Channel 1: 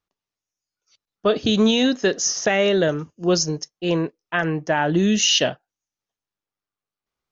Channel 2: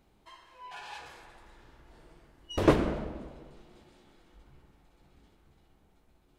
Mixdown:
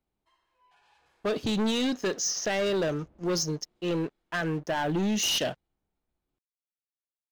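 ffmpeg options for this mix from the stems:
-filter_complex "[0:a]aeval=exprs='sgn(val(0))*max(abs(val(0))-0.00501,0)':c=same,volume=0.708[s0];[1:a]acrossover=split=180[s1][s2];[s2]acompressor=threshold=0.00708:ratio=6[s3];[s1][s3]amix=inputs=2:normalize=0,volume=0.126[s4];[s0][s4]amix=inputs=2:normalize=0,asoftclip=type=tanh:threshold=0.0668"

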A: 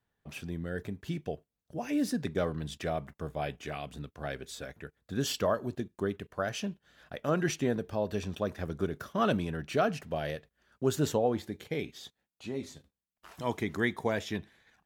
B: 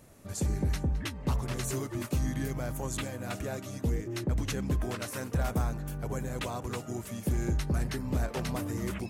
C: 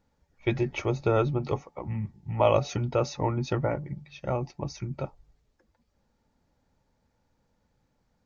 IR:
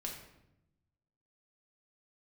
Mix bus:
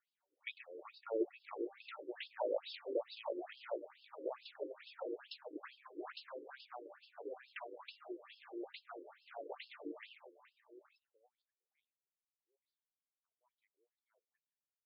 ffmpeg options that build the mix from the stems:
-filter_complex "[0:a]equalizer=f=290:w=1.9:g=-13,volume=0.376[s0];[1:a]adelay=1150,volume=0.562,asplit=2[s1][s2];[s2]volume=0.2[s3];[2:a]volume=0.473,asplit=3[s4][s5][s6];[s5]volume=0.668[s7];[s6]apad=whole_len=654957[s8];[s0][s8]sidechaingate=range=0.0224:threshold=0.00126:ratio=16:detection=peak[s9];[s3][s7]amix=inputs=2:normalize=0,aecho=0:1:736:1[s10];[s9][s1][s4][s10]amix=inputs=4:normalize=0,acrossover=split=490|3000[s11][s12][s13];[s12]acompressor=threshold=0.00794:ratio=6[s14];[s11][s14][s13]amix=inputs=3:normalize=0,afftfilt=real='re*between(b*sr/1024,380*pow(3800/380,0.5+0.5*sin(2*PI*2.3*pts/sr))/1.41,380*pow(3800/380,0.5+0.5*sin(2*PI*2.3*pts/sr))*1.41)':imag='im*between(b*sr/1024,380*pow(3800/380,0.5+0.5*sin(2*PI*2.3*pts/sr))/1.41,380*pow(3800/380,0.5+0.5*sin(2*PI*2.3*pts/sr))*1.41)':win_size=1024:overlap=0.75"

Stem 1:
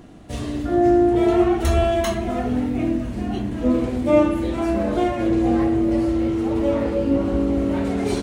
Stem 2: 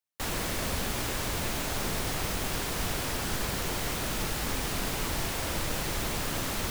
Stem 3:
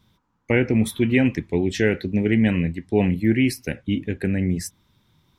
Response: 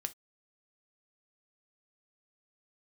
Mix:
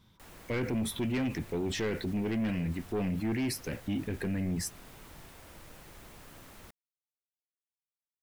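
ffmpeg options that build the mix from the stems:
-filter_complex "[1:a]acrossover=split=2800[s0][s1];[s1]acompressor=threshold=0.00708:ratio=4:attack=1:release=60[s2];[s0][s2]amix=inputs=2:normalize=0,highshelf=f=5700:g=9.5,volume=0.106[s3];[2:a]asoftclip=type=tanh:threshold=0.133,volume=0.841[s4];[s3][s4]amix=inputs=2:normalize=0,alimiter=level_in=1.33:limit=0.0631:level=0:latency=1:release=15,volume=0.75"

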